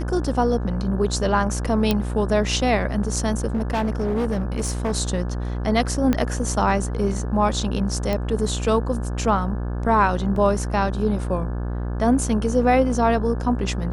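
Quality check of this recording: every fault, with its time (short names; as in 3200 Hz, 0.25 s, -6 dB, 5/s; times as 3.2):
buzz 60 Hz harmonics 29 -26 dBFS
1.91 pop -6 dBFS
3.54–4.92 clipped -18.5 dBFS
6.13 pop -8 dBFS
8.13 pop -12 dBFS
10.36 gap 2.8 ms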